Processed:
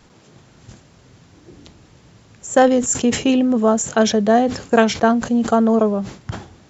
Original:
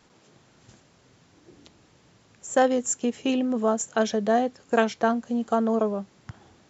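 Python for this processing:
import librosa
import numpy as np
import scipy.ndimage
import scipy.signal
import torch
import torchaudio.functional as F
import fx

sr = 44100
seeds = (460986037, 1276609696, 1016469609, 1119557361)

y = fx.low_shelf(x, sr, hz=140.0, db=10.0)
y = fx.sustainer(y, sr, db_per_s=120.0)
y = y * 10.0 ** (6.5 / 20.0)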